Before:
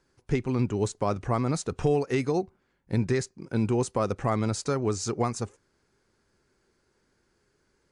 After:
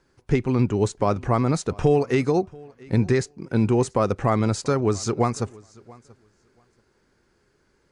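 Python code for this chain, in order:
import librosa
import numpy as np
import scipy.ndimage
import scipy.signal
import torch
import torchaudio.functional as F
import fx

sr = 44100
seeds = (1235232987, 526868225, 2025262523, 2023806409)

y = fx.high_shelf(x, sr, hz=5600.0, db=-6.0)
y = fx.echo_feedback(y, sr, ms=683, feedback_pct=16, wet_db=-24)
y = y * 10.0 ** (5.5 / 20.0)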